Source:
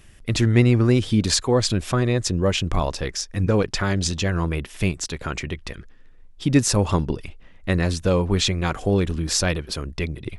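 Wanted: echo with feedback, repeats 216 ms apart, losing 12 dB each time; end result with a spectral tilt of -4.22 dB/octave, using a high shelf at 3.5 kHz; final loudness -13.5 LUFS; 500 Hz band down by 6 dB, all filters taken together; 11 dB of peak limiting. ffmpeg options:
-af "equalizer=f=500:t=o:g=-8,highshelf=f=3500:g=5.5,alimiter=limit=0.224:level=0:latency=1,aecho=1:1:216|432|648:0.251|0.0628|0.0157,volume=3.55"

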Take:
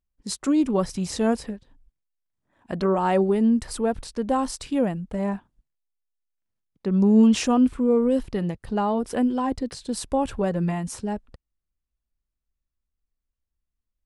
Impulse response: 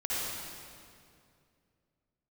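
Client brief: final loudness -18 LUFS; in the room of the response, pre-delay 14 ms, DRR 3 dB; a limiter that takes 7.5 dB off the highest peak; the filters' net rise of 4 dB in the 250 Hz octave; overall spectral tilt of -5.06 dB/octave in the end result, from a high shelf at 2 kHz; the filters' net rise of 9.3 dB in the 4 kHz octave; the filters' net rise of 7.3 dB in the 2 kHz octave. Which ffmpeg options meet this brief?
-filter_complex "[0:a]equalizer=f=250:t=o:g=4.5,highshelf=f=2000:g=4.5,equalizer=f=2000:t=o:g=5,equalizer=f=4000:t=o:g=6,alimiter=limit=0.251:level=0:latency=1,asplit=2[s0][s1];[1:a]atrim=start_sample=2205,adelay=14[s2];[s1][s2]afir=irnorm=-1:irlink=0,volume=0.316[s3];[s0][s3]amix=inputs=2:normalize=0,volume=1.33"

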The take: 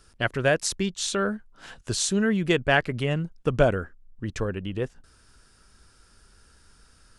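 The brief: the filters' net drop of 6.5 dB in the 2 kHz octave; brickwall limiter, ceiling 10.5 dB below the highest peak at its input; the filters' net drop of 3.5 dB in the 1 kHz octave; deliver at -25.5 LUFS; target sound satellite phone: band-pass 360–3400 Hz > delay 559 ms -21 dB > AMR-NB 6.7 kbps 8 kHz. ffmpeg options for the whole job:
-af "equalizer=f=1000:t=o:g=-3.5,equalizer=f=2000:t=o:g=-7,alimiter=limit=0.126:level=0:latency=1,highpass=360,lowpass=3400,aecho=1:1:559:0.0891,volume=3.16" -ar 8000 -c:a libopencore_amrnb -b:a 6700

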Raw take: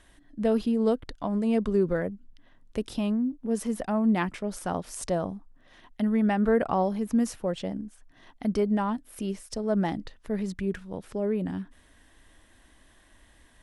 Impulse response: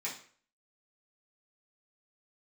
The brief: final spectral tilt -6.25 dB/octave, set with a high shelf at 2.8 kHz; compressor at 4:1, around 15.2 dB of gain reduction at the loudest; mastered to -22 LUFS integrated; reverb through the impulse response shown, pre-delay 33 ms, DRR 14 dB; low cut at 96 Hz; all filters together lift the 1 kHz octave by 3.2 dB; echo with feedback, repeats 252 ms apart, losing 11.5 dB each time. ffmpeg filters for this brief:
-filter_complex "[0:a]highpass=96,equalizer=f=1000:t=o:g=5,highshelf=f=2800:g=-6,acompressor=threshold=0.0126:ratio=4,aecho=1:1:252|504|756:0.266|0.0718|0.0194,asplit=2[s0][s1];[1:a]atrim=start_sample=2205,adelay=33[s2];[s1][s2]afir=irnorm=-1:irlink=0,volume=0.15[s3];[s0][s3]amix=inputs=2:normalize=0,volume=7.94"

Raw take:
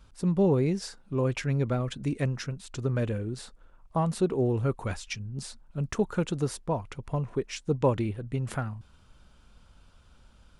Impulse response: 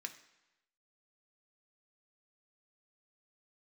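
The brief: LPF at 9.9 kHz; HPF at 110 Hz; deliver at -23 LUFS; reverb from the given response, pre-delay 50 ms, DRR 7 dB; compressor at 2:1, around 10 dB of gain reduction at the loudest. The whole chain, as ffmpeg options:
-filter_complex "[0:a]highpass=110,lowpass=9900,acompressor=threshold=0.0126:ratio=2,asplit=2[s0][s1];[1:a]atrim=start_sample=2205,adelay=50[s2];[s1][s2]afir=irnorm=-1:irlink=0,volume=0.596[s3];[s0][s3]amix=inputs=2:normalize=0,volume=5.62"

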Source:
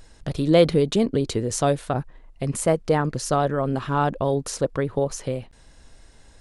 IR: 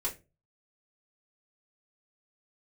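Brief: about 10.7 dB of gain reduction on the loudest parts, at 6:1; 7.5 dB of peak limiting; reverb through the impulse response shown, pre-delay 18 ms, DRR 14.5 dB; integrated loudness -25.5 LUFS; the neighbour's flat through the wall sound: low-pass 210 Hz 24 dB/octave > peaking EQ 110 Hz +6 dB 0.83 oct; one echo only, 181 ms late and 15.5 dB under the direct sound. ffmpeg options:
-filter_complex "[0:a]acompressor=threshold=0.0708:ratio=6,alimiter=limit=0.112:level=0:latency=1,aecho=1:1:181:0.168,asplit=2[s0][s1];[1:a]atrim=start_sample=2205,adelay=18[s2];[s1][s2]afir=irnorm=-1:irlink=0,volume=0.126[s3];[s0][s3]amix=inputs=2:normalize=0,lowpass=f=210:w=0.5412,lowpass=f=210:w=1.3066,equalizer=f=110:t=o:w=0.83:g=6,volume=2.51"

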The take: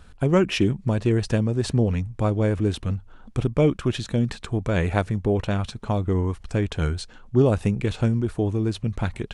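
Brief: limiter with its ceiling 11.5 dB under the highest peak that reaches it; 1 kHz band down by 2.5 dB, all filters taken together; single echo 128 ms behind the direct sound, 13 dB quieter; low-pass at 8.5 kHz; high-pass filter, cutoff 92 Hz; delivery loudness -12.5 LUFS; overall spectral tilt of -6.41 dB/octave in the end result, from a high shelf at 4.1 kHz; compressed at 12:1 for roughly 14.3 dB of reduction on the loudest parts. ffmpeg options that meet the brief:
-af "highpass=92,lowpass=8500,equalizer=f=1000:t=o:g=-3,highshelf=f=4100:g=-7.5,acompressor=threshold=0.0355:ratio=12,alimiter=level_in=1.88:limit=0.0631:level=0:latency=1,volume=0.531,aecho=1:1:128:0.224,volume=22.4"

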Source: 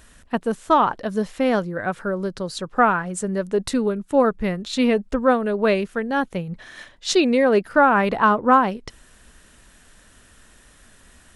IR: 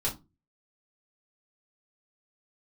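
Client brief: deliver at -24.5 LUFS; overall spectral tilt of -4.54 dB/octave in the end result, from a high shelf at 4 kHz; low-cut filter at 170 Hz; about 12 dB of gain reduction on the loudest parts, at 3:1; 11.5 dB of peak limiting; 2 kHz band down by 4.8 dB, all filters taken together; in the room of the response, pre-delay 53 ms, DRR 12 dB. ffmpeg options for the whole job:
-filter_complex "[0:a]highpass=170,equalizer=f=2000:t=o:g=-8.5,highshelf=f=4000:g=5.5,acompressor=threshold=0.0355:ratio=3,alimiter=level_in=1.33:limit=0.0631:level=0:latency=1,volume=0.75,asplit=2[s0][s1];[1:a]atrim=start_sample=2205,adelay=53[s2];[s1][s2]afir=irnorm=-1:irlink=0,volume=0.126[s3];[s0][s3]amix=inputs=2:normalize=0,volume=3.55"

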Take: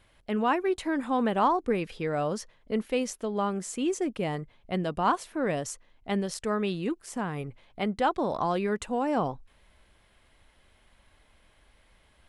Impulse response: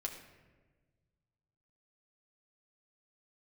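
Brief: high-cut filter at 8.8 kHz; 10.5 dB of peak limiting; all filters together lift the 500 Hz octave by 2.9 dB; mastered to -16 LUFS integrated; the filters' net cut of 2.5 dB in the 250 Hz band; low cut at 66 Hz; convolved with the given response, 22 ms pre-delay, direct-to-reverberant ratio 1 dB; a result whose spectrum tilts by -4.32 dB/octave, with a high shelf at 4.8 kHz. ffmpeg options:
-filter_complex "[0:a]highpass=66,lowpass=8800,equalizer=f=250:t=o:g=-5,equalizer=f=500:t=o:g=5,highshelf=f=4800:g=9,alimiter=limit=0.0841:level=0:latency=1,asplit=2[s0][s1];[1:a]atrim=start_sample=2205,adelay=22[s2];[s1][s2]afir=irnorm=-1:irlink=0,volume=0.944[s3];[s0][s3]amix=inputs=2:normalize=0,volume=4.47"

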